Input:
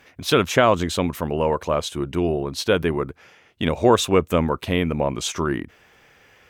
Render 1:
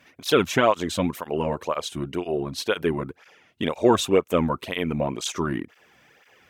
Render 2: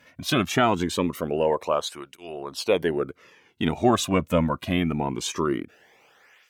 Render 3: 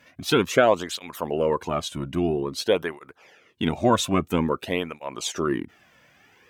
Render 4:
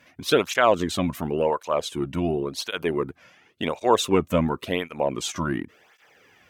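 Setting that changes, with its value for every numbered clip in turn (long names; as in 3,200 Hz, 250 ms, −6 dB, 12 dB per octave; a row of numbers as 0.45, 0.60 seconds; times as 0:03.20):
through-zero flanger with one copy inverted, nulls at: 2, 0.23, 0.5, 0.92 Hertz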